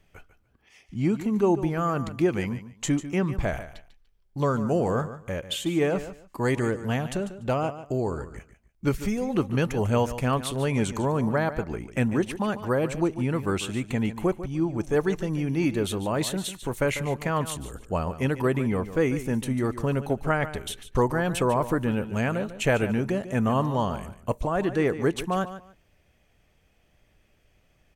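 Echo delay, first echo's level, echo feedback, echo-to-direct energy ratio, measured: 146 ms, −13.0 dB, 20%, −13.0 dB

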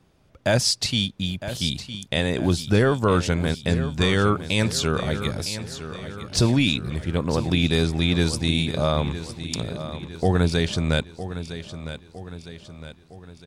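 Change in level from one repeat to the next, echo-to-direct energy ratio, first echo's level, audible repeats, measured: −6.0 dB, −11.0 dB, −12.0 dB, 4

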